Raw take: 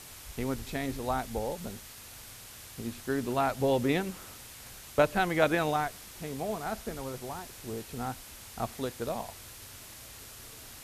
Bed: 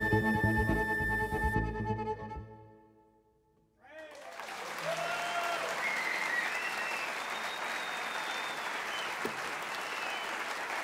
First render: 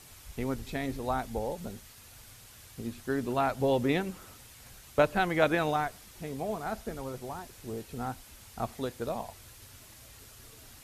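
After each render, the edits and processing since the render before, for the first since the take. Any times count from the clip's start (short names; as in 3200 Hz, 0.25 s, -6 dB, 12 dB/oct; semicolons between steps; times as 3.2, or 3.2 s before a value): denoiser 6 dB, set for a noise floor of -48 dBFS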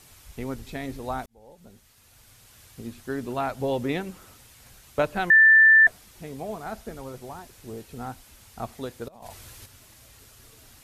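1.26–2.63 fade in; 5.3–5.87 bleep 1770 Hz -11 dBFS; 9.08–9.66 negative-ratio compressor -45 dBFS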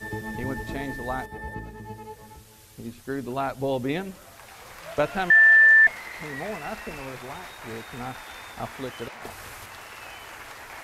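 add bed -5 dB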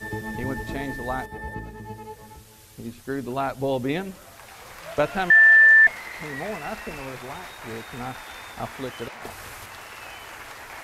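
gain +1.5 dB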